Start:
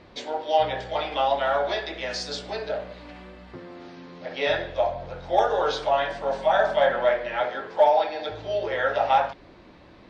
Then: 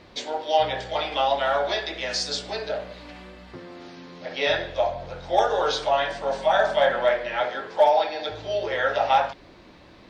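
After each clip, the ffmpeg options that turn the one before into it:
-af "highshelf=f=3700:g=8.5"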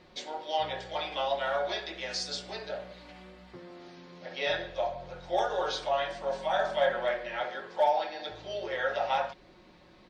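-af "aecho=1:1:5.5:0.41,volume=0.398"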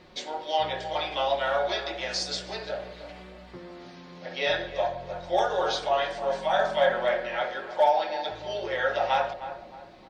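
-filter_complex "[0:a]asplit=2[s0][s1];[s1]adelay=310,lowpass=f=1500:p=1,volume=0.282,asplit=2[s2][s3];[s3]adelay=310,lowpass=f=1500:p=1,volume=0.39,asplit=2[s4][s5];[s5]adelay=310,lowpass=f=1500:p=1,volume=0.39,asplit=2[s6][s7];[s7]adelay=310,lowpass=f=1500:p=1,volume=0.39[s8];[s0][s2][s4][s6][s8]amix=inputs=5:normalize=0,volume=1.58"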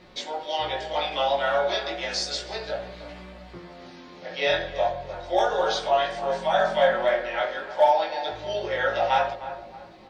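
-af "flanger=delay=17:depth=4.4:speed=0.32,volume=1.78"

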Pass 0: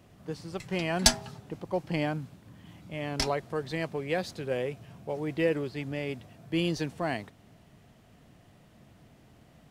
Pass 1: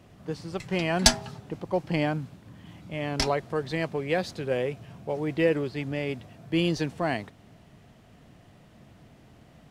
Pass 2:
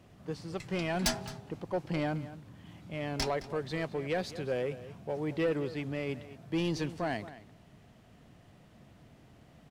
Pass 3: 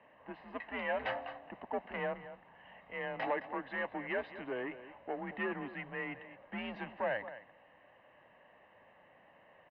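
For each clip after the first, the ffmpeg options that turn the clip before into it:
-af "highshelf=f=9200:g=-6.5,volume=1.5"
-filter_complex "[0:a]asoftclip=type=tanh:threshold=0.112,asplit=2[s0][s1];[s1]adelay=215.7,volume=0.178,highshelf=f=4000:g=-4.85[s2];[s0][s2]amix=inputs=2:normalize=0,volume=0.631"
-af "aecho=1:1:1:0.64,asoftclip=type=tanh:threshold=0.0447,highpass=f=430:t=q:w=0.5412,highpass=f=430:t=q:w=1.307,lowpass=f=2700:t=q:w=0.5176,lowpass=f=2700:t=q:w=0.7071,lowpass=f=2700:t=q:w=1.932,afreqshift=-120,volume=1.33"

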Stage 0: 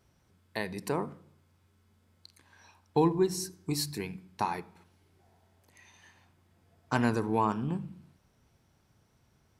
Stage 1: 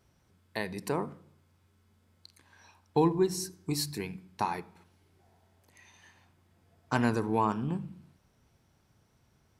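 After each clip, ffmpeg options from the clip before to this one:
-af anull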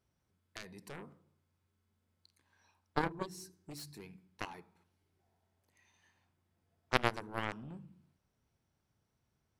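-af "aeval=exprs='0.299*(cos(1*acos(clip(val(0)/0.299,-1,1)))-cos(1*PI/2))+0.106*(cos(3*acos(clip(val(0)/0.299,-1,1)))-cos(3*PI/2))+0.00422*(cos(7*acos(clip(val(0)/0.299,-1,1)))-cos(7*PI/2))':c=same,volume=1.41"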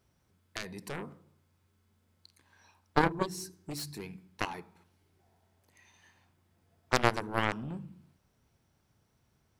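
-af "aeval=exprs='0.562*sin(PI/2*2*val(0)/0.562)':c=same,volume=0.841"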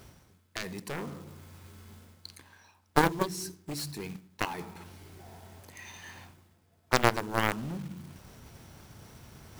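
-af "areverse,acompressor=mode=upward:threshold=0.0158:ratio=2.5,areverse,acrusher=bits=3:mode=log:mix=0:aa=0.000001,volume=1.26"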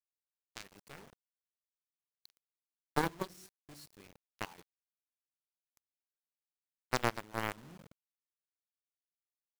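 -af "aeval=exprs='sgn(val(0))*max(abs(val(0))-0.0141,0)':c=same,volume=0.398"

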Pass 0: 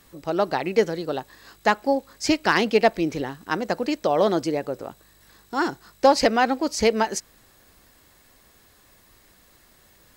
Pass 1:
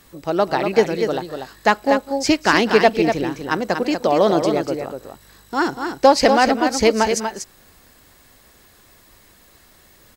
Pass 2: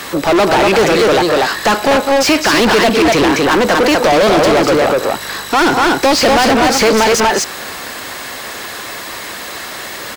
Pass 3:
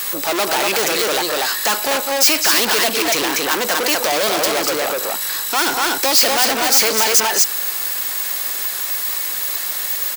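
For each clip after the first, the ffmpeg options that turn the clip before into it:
-af "aecho=1:1:201|241:0.112|0.473,volume=1.58"
-filter_complex "[0:a]acrossover=split=420|3000[s0][s1][s2];[s1]acompressor=threshold=0.112:ratio=6[s3];[s0][s3][s2]amix=inputs=3:normalize=0,asplit=2[s4][s5];[s5]highpass=f=720:p=1,volume=70.8,asoftclip=type=tanh:threshold=0.668[s6];[s4][s6]amix=inputs=2:normalize=0,lowpass=f=3600:p=1,volume=0.501"
-af "aemphasis=mode=production:type=riaa,volume=0.422"

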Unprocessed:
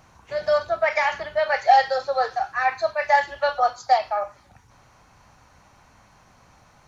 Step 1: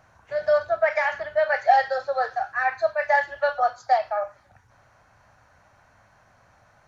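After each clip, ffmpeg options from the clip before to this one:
-af "equalizer=f=100:t=o:w=0.67:g=7,equalizer=f=630:t=o:w=0.67:g=9,equalizer=f=1600:t=o:w=0.67:g=10,volume=0.376"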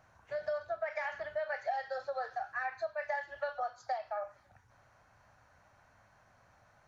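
-af "acompressor=threshold=0.0447:ratio=4,volume=0.447"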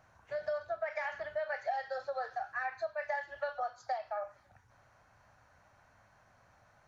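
-af anull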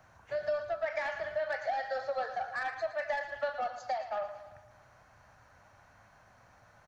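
-filter_complex "[0:a]acrossover=split=220|600|2300[s0][s1][s2][s3];[s2]asoftclip=type=tanh:threshold=0.0141[s4];[s0][s1][s4][s3]amix=inputs=4:normalize=0,aecho=1:1:113|226|339|452|565|678:0.266|0.149|0.0834|0.0467|0.0262|0.0147,volume=1.58"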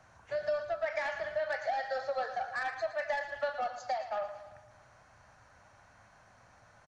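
-af "aresample=22050,aresample=44100,highshelf=f=5900:g=5,bandreject=f=46.49:t=h:w=4,bandreject=f=92.98:t=h:w=4,bandreject=f=139.47:t=h:w=4"

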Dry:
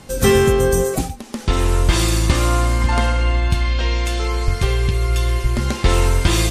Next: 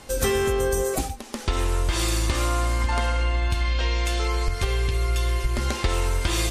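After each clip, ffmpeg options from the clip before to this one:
-af "equalizer=f=160:t=o:w=1.2:g=-11,acompressor=threshold=0.126:ratio=6,volume=0.891"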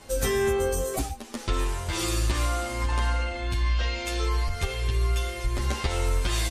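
-filter_complex "[0:a]asplit=2[s0][s1];[s1]adelay=9.5,afreqshift=1.5[s2];[s0][s2]amix=inputs=2:normalize=1"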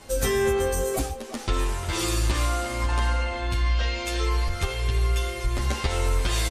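-filter_complex "[0:a]asplit=2[s0][s1];[s1]adelay=350,highpass=300,lowpass=3400,asoftclip=type=hard:threshold=0.0841,volume=0.316[s2];[s0][s2]amix=inputs=2:normalize=0,volume=1.19"

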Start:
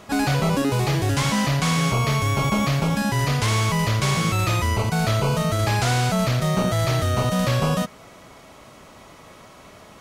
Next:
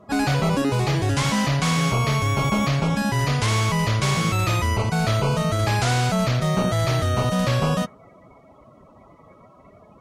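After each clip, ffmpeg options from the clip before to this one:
-af "afftdn=nr=23:nf=-42"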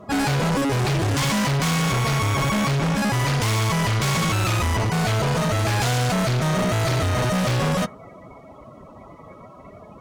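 -af "asoftclip=type=hard:threshold=0.0501,volume=2.11"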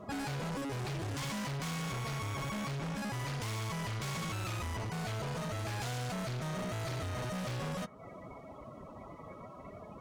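-af "acompressor=threshold=0.02:ratio=4,volume=0.531"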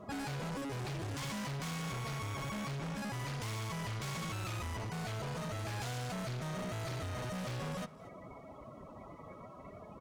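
-af "aecho=1:1:231:0.1,volume=0.794"

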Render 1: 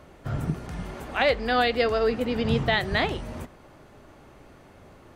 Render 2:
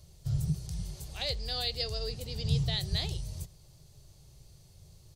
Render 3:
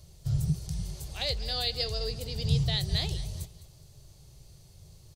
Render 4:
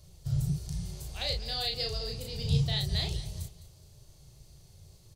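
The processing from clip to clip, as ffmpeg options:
-af "firequalizer=gain_entry='entry(150,0);entry(240,-26);entry(370,-16);entry(1400,-25);entry(4400,5)':delay=0.05:min_phase=1"
-af "aecho=1:1:208|416|624:0.158|0.0507|0.0162,volume=1.33"
-filter_complex "[0:a]asplit=2[s0][s1];[s1]adelay=35,volume=0.668[s2];[s0][s2]amix=inputs=2:normalize=0,volume=0.708"

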